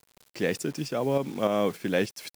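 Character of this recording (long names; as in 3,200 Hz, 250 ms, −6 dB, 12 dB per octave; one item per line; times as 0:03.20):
a quantiser's noise floor 8 bits, dither none
tremolo saw up 3.4 Hz, depth 50%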